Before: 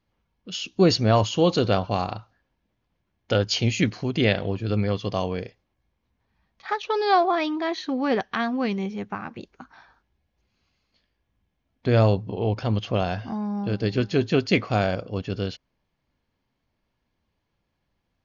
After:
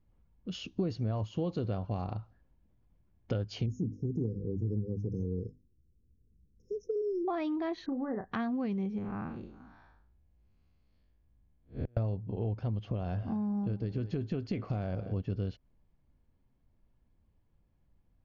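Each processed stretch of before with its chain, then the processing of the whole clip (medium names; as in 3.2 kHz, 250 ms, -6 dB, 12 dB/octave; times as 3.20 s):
3.66–7.28 s: brick-wall FIR band-stop 510–5100 Hz + hum notches 50/100/150/200/250/300 Hz
7.86–8.32 s: compression 2:1, threshold -32 dBFS + brick-wall FIR low-pass 2.1 kHz + doubling 33 ms -9 dB
8.98–11.97 s: spectral blur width 161 ms + inverted gate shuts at -19 dBFS, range -37 dB
12.69–15.14 s: delay 213 ms -19.5 dB + compression 2.5:1, threshold -22 dBFS
whole clip: tilt EQ -3.5 dB/octave; compression 5:1, threshold -25 dBFS; trim -6 dB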